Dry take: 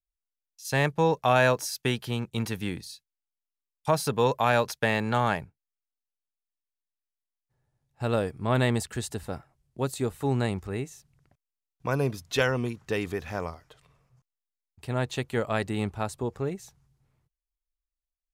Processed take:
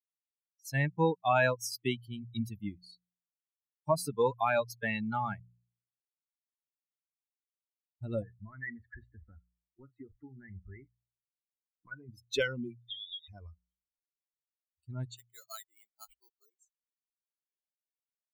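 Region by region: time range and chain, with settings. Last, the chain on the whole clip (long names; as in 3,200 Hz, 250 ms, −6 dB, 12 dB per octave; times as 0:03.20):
0:08.22–0:12.09: double-tracking delay 38 ms −11 dB + downward compressor, threshold −29 dBFS + envelope-controlled low-pass 350–1,800 Hz up, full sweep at −35.5 dBFS
0:12.80–0:13.28: voice inversion scrambler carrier 3,700 Hz + downward compressor, threshold −33 dBFS
0:15.17–0:16.59: high-pass filter 770 Hz + parametric band 3,100 Hz −10 dB 0.3 octaves + bad sample-rate conversion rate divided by 8×, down none, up hold
whole clip: spectral dynamics exaggerated over time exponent 3; hum removal 59.55 Hz, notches 3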